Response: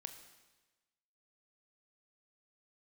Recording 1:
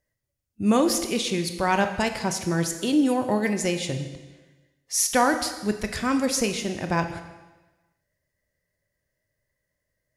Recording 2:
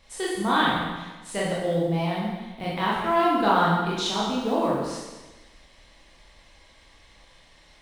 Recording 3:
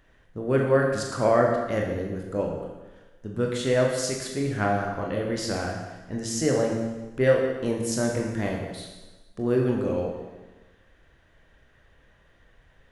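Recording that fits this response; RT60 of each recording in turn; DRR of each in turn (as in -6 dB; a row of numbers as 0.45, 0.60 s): 1; 1.2, 1.2, 1.2 s; 7.0, -6.5, -0.5 dB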